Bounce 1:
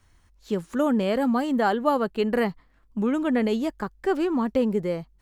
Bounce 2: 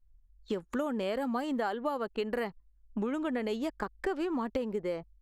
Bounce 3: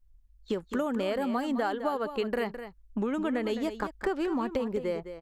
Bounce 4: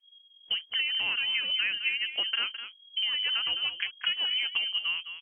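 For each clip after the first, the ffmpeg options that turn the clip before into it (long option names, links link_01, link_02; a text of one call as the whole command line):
ffmpeg -i in.wav -af "anlmdn=0.1,equalizer=frequency=150:width=1.1:gain=-10,acompressor=threshold=-33dB:ratio=6,volume=3dB" out.wav
ffmpeg -i in.wav -af "aecho=1:1:211:0.299,volume=2.5dB" out.wav
ffmpeg -i in.wav -af "lowpass=frequency=2800:width_type=q:width=0.5098,lowpass=frequency=2800:width_type=q:width=0.6013,lowpass=frequency=2800:width_type=q:width=0.9,lowpass=frequency=2800:width_type=q:width=2.563,afreqshift=-3300" out.wav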